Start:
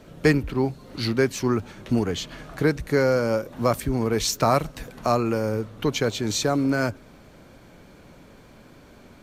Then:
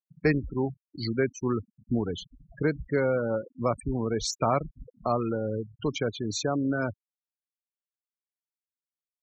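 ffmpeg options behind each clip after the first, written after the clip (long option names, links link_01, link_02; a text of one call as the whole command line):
ffmpeg -i in.wav -af "afftfilt=real='re*gte(hypot(re,im),0.0631)':imag='im*gte(hypot(re,im),0.0631)':win_size=1024:overlap=0.75,volume=-5dB" out.wav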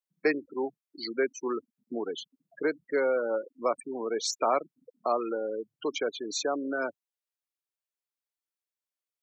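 ffmpeg -i in.wav -af "highpass=frequency=320:width=0.5412,highpass=frequency=320:width=1.3066" out.wav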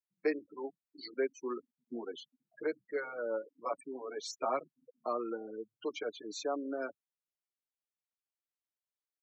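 ffmpeg -i in.wav -filter_complex "[0:a]highshelf=frequency=5900:gain=-7.5,asplit=2[link_01][link_02];[link_02]adelay=6.3,afreqshift=-0.35[link_03];[link_01][link_03]amix=inputs=2:normalize=1,volume=-4.5dB" out.wav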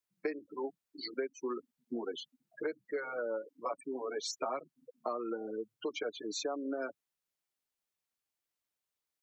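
ffmpeg -i in.wav -af "acompressor=threshold=-38dB:ratio=6,volume=5dB" out.wav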